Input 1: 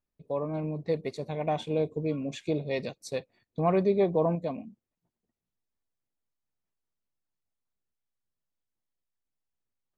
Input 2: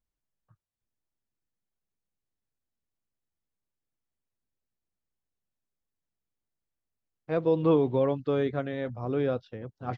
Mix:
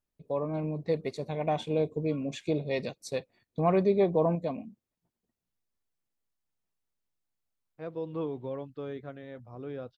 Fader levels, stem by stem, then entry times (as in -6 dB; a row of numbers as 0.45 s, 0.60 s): 0.0 dB, -11.5 dB; 0.00 s, 0.50 s